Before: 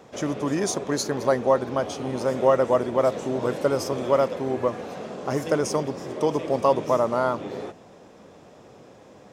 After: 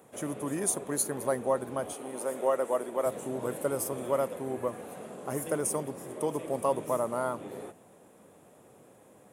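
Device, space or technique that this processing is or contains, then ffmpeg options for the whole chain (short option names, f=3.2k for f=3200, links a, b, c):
budget condenser microphone: -filter_complex "[0:a]highpass=79,highshelf=f=7.4k:t=q:w=3:g=13,asettb=1/sr,asplit=3[a][b][c];[a]atrim=end=1.934[d];[b]atrim=start=1.93:end=3.06,asetpts=PTS-STARTPTS,afade=t=in:d=0.004:c=qsin,afade=t=out:st=1.126:d=0.004:c=qsin,highpass=300[e];[c]atrim=start=3.056[f];[d][e]acrossfade=d=0.004:c1=hsin:c2=qsin[g];[g][f]acrossfade=d=0.004:c1=qsin:c2=hsin,volume=-8dB"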